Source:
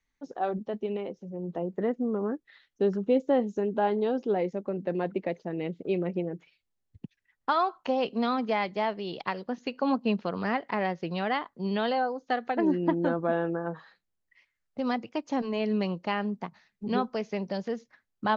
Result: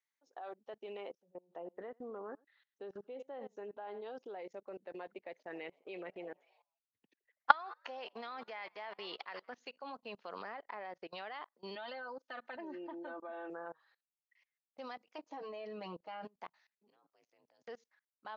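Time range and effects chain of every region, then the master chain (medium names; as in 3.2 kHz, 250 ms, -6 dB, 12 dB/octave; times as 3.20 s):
1.18–4.06 s: treble shelf 4.7 kHz -11.5 dB + delay 88 ms -18.5 dB
5.31–9.54 s: peaking EQ 1.8 kHz +6 dB 0.8 oct + frequency-shifting echo 81 ms, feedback 59%, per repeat +100 Hz, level -21 dB
10.42–11.07 s: treble shelf 2.3 kHz -7.5 dB + band-stop 2.8 kHz, Q 18
11.75–13.50 s: distance through air 88 m + comb 3.3 ms, depth 96%
15.18–16.25 s: tilt shelf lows +5.5 dB, about 1.1 kHz + comb 6.3 ms, depth 90%
16.90–17.68 s: level held to a coarse grid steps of 20 dB + ring modulator 57 Hz + three bands expanded up and down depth 100%
whole clip: high-pass 620 Hz 12 dB/octave; level held to a coarse grid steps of 22 dB; upward expansion 1.5:1, over -56 dBFS; trim +7.5 dB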